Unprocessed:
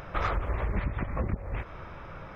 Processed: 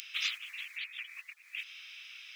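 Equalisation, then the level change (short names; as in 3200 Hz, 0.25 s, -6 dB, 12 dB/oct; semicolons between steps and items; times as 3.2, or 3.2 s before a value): Chebyshev high-pass 2700 Hz, order 4; +14.5 dB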